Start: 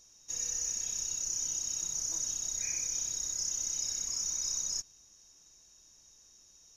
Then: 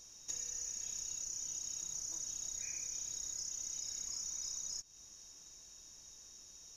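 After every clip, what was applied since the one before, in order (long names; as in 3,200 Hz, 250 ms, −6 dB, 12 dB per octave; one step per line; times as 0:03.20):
downward compressor 12 to 1, threshold −43 dBFS, peak gain reduction 13 dB
level +4 dB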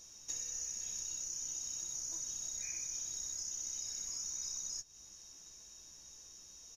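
double-tracking delay 15 ms −7 dB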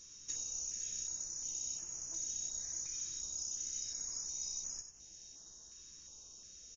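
on a send: single-tap delay 93 ms −8 dB
on the sum: downsampling to 16,000 Hz
notch on a step sequencer 2.8 Hz 730–3,900 Hz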